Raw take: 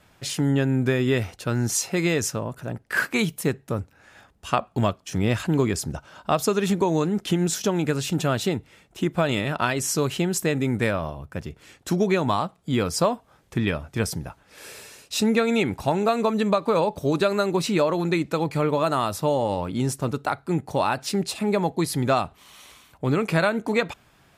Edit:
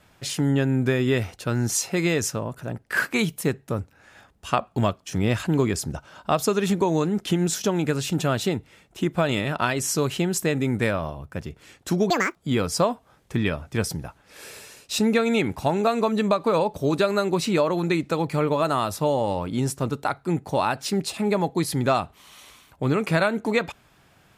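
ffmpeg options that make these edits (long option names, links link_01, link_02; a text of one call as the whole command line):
ffmpeg -i in.wav -filter_complex "[0:a]asplit=3[link_01][link_02][link_03];[link_01]atrim=end=12.104[link_04];[link_02]atrim=start=12.1:end=12.57,asetpts=PTS-STARTPTS,asetrate=81585,aresample=44100[link_05];[link_03]atrim=start=12.566[link_06];[link_04][link_05]acrossfade=duration=0.004:curve1=hsin:curve2=hsin[link_07];[link_07][link_06]acrossfade=duration=0.004:curve1=hsin:curve2=hsin" out.wav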